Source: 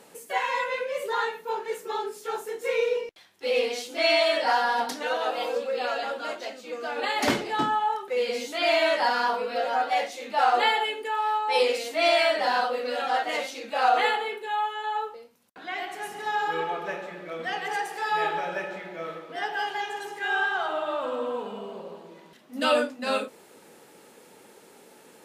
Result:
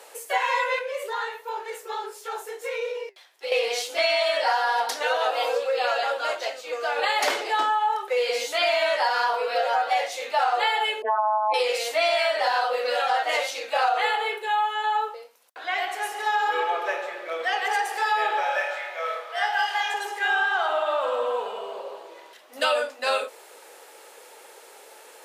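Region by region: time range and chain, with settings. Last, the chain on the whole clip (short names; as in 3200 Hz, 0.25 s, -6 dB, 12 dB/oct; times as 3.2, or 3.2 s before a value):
0.79–3.52 compressor 2.5:1, threshold -28 dBFS + flange 1.4 Hz, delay 4.9 ms, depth 4.9 ms, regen +79%
11.02–11.54 spectral contrast raised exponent 2.4 + bell 630 Hz +11.5 dB 1.3 oct + AM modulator 210 Hz, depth 95%
18.43–19.94 HPF 570 Hz 24 dB/oct + flutter echo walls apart 4.5 m, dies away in 0.33 s
whole clip: HPF 470 Hz 24 dB/oct; compressor, threshold -26 dBFS; gain +6.5 dB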